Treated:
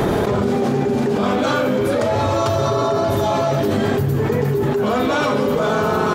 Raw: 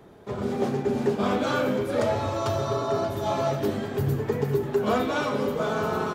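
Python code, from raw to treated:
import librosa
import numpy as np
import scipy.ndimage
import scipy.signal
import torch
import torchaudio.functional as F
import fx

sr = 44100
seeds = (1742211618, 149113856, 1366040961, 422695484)

y = fx.env_flatten(x, sr, amount_pct=100)
y = F.gain(torch.from_numpy(y), 1.5).numpy()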